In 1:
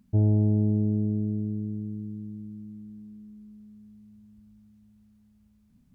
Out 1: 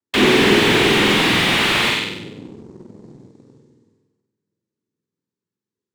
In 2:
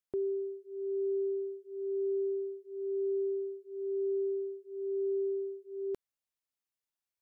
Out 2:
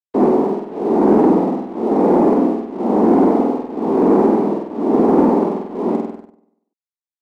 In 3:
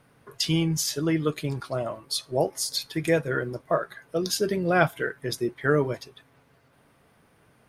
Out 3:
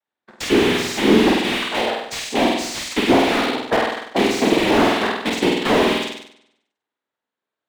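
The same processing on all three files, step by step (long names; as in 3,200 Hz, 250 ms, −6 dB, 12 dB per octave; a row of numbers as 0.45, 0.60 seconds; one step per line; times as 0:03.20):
loose part that buzzes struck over −30 dBFS, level −10 dBFS
noise gate −49 dBFS, range −26 dB
high-pass filter 260 Hz 24 dB per octave
dynamic equaliser 330 Hz, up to +8 dB, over −43 dBFS, Q 3
cochlear-implant simulation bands 6
flutter between parallel walls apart 8.3 metres, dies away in 0.82 s
leveller curve on the samples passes 1
slew-rate limiting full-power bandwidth 180 Hz
normalise the peak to −2 dBFS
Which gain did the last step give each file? +7.0, +11.0, +1.5 decibels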